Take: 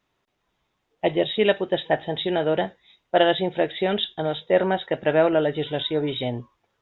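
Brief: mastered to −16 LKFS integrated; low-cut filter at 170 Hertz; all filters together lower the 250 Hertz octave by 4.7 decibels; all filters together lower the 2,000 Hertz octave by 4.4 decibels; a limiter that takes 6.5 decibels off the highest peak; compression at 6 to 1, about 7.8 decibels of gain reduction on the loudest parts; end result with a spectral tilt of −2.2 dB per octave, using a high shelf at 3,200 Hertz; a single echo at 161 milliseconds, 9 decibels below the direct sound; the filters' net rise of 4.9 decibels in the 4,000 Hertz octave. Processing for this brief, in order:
high-pass filter 170 Hz
parametric band 250 Hz −6.5 dB
parametric band 2,000 Hz −8.5 dB
high-shelf EQ 3,200 Hz +5 dB
parametric band 4,000 Hz +5.5 dB
downward compressor 6 to 1, threshold −23 dBFS
brickwall limiter −19.5 dBFS
single-tap delay 161 ms −9 dB
level +13.5 dB

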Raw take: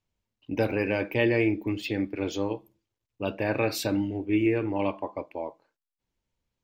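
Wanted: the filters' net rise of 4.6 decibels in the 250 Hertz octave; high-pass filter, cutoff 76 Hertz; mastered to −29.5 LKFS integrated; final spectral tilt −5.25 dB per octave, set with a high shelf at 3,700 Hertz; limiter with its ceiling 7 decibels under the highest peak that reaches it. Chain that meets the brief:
high-pass filter 76 Hz
parametric band 250 Hz +6.5 dB
high-shelf EQ 3,700 Hz +3.5 dB
level −1.5 dB
brickwall limiter −18.5 dBFS

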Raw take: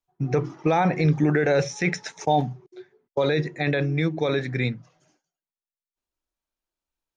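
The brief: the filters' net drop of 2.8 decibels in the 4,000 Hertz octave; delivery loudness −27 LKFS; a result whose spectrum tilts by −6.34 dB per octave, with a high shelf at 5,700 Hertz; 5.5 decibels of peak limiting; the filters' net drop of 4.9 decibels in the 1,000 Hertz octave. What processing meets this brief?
parametric band 1,000 Hz −7.5 dB
parametric band 4,000 Hz −6.5 dB
high-shelf EQ 5,700 Hz +9 dB
level +0.5 dB
brickwall limiter −16.5 dBFS

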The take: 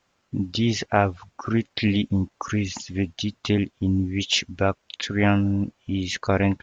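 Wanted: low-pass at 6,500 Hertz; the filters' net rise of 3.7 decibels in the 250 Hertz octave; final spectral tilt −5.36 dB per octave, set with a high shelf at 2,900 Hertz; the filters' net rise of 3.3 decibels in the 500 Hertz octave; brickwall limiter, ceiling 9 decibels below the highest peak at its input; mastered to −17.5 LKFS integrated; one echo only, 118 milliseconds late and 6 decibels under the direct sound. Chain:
low-pass filter 6,500 Hz
parametric band 250 Hz +4 dB
parametric band 500 Hz +3 dB
high-shelf EQ 2,900 Hz +3 dB
brickwall limiter −11.5 dBFS
single-tap delay 118 ms −6 dB
level +5 dB

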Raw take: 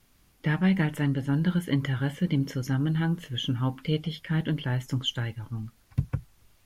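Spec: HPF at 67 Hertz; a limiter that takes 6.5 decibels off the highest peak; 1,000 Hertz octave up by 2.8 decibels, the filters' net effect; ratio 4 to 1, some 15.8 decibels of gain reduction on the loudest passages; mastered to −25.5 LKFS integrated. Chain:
high-pass filter 67 Hz
parametric band 1,000 Hz +3.5 dB
downward compressor 4 to 1, threshold −38 dBFS
level +17 dB
brickwall limiter −15.5 dBFS

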